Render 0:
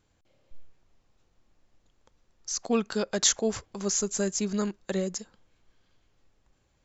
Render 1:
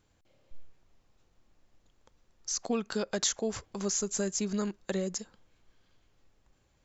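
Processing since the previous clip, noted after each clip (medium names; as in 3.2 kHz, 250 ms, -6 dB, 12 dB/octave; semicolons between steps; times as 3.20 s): compression 2.5:1, threshold -29 dBFS, peak gain reduction 7.5 dB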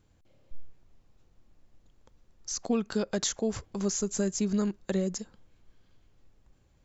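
bass shelf 380 Hz +8 dB; trim -1.5 dB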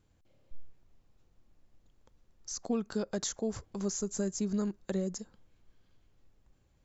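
dynamic bell 2.7 kHz, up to -6 dB, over -53 dBFS, Q 1.2; trim -4 dB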